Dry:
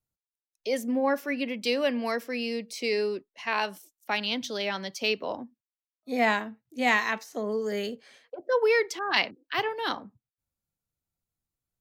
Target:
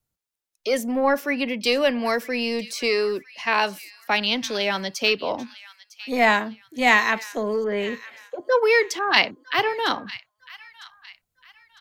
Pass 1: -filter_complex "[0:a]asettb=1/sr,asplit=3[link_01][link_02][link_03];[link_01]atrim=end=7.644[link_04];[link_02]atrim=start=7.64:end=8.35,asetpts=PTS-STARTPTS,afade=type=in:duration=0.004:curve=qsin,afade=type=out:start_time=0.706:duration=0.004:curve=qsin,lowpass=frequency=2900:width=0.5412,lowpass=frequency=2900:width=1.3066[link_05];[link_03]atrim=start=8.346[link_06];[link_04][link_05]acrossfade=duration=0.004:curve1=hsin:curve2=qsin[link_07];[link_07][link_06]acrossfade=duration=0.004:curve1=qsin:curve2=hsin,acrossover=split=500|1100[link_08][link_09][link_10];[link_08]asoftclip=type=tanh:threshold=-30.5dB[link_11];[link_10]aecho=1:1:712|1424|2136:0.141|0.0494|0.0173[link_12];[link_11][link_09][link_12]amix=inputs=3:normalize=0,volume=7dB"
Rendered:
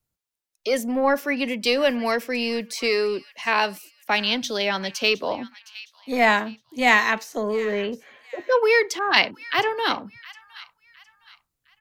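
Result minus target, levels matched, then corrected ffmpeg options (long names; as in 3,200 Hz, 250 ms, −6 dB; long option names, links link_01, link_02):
echo 242 ms early
-filter_complex "[0:a]asettb=1/sr,asplit=3[link_01][link_02][link_03];[link_01]atrim=end=7.644[link_04];[link_02]atrim=start=7.64:end=8.35,asetpts=PTS-STARTPTS,afade=type=in:duration=0.004:curve=qsin,afade=type=out:start_time=0.706:duration=0.004:curve=qsin,lowpass=frequency=2900:width=0.5412,lowpass=frequency=2900:width=1.3066[link_05];[link_03]atrim=start=8.346[link_06];[link_04][link_05]acrossfade=duration=0.004:curve1=hsin:curve2=qsin[link_07];[link_07][link_06]acrossfade=duration=0.004:curve1=qsin:curve2=hsin,acrossover=split=500|1100[link_08][link_09][link_10];[link_08]asoftclip=type=tanh:threshold=-30.5dB[link_11];[link_10]aecho=1:1:954|1908|2862:0.141|0.0494|0.0173[link_12];[link_11][link_09][link_12]amix=inputs=3:normalize=0,volume=7dB"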